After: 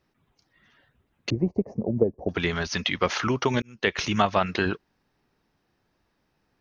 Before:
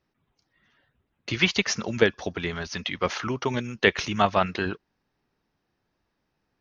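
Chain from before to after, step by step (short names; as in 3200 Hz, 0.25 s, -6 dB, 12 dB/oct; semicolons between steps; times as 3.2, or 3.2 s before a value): 1.3–2.29 inverse Chebyshev low-pass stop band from 1300 Hz, stop band 40 dB; 3.62–4.18 fade in; compressor 3:1, threshold -23 dBFS, peak gain reduction 7 dB; gain +4.5 dB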